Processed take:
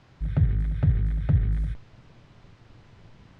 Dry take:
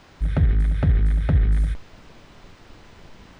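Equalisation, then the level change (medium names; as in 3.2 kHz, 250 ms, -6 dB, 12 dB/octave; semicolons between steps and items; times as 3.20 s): distance through air 50 m; peaking EQ 120 Hz +12 dB 0.86 oct; -8.5 dB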